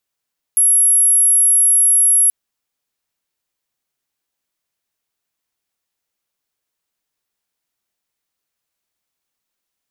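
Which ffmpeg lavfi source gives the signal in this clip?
-f lavfi -i "sine=f=11200:d=1.73:r=44100,volume=9.06dB"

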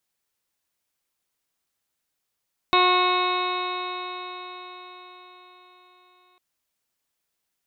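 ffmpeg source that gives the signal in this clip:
-f lavfi -i "aevalsrc='0.075*pow(10,-3*t/4.99)*sin(2*PI*362.12*t)+0.0668*pow(10,-3*t/4.99)*sin(2*PI*724.93*t)+0.133*pow(10,-3*t/4.99)*sin(2*PI*1089.12*t)+0.0266*pow(10,-3*t/4.99)*sin(2*PI*1455.39*t)+0.0133*pow(10,-3*t/4.99)*sin(2*PI*1824.42*t)+0.0473*pow(10,-3*t/4.99)*sin(2*PI*2196.88*t)+0.0473*pow(10,-3*t/4.99)*sin(2*PI*2573.43*t)+0.0133*pow(10,-3*t/4.99)*sin(2*PI*2954.71*t)+0.0106*pow(10,-3*t/4.99)*sin(2*PI*3341.38*t)+0.075*pow(10,-3*t/4.99)*sin(2*PI*3734.04*t)+0.0188*pow(10,-3*t/4.99)*sin(2*PI*4133.31*t)':d=3.65:s=44100"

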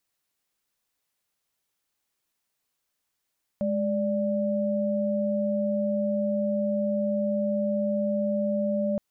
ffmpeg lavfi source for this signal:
-f lavfi -i "aevalsrc='0.0501*(sin(2*PI*207.65*t)+sin(2*PI*587.33*t))':d=5.37:s=44100"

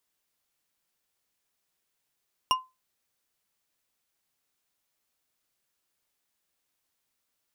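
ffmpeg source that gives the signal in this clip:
-f lavfi -i "aevalsrc='0.141*pow(10,-3*t/0.23)*sin(2*PI*1030*t)+0.0891*pow(10,-3*t/0.113)*sin(2*PI*2839.7*t)+0.0562*pow(10,-3*t/0.071)*sin(2*PI*5566.1*t)+0.0355*pow(10,-3*t/0.05)*sin(2*PI*9201*t)+0.0224*pow(10,-3*t/0.038)*sin(2*PI*13740.2*t)':d=0.89:s=44100"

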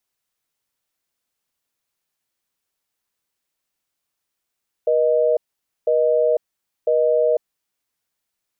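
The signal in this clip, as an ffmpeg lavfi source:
-f lavfi -i "aevalsrc='0.141*(sin(2*PI*480*t)+sin(2*PI*620*t))*clip(min(mod(t,1),0.5-mod(t,1))/0.005,0,1)':d=3:s=44100"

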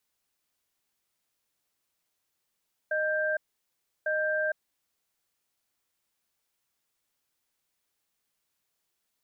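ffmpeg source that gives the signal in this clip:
-f lavfi -i "aevalsrc='0.0398*(sin(2*PI*617*t)+sin(2*PI*1580*t))*clip(min(mod(t,1.15),0.46-mod(t,1.15))/0.005,0,1)':d=2.02:s=44100"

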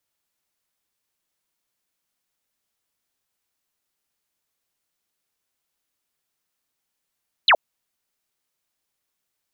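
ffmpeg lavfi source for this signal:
-f lavfi -i "aevalsrc='0.299*clip(t/0.002,0,1)*clip((0.07-t)/0.002,0,1)*sin(2*PI*4400*0.07/log(530/4400)*(exp(log(530/4400)*t/0.07)-1))':d=0.07:s=44100"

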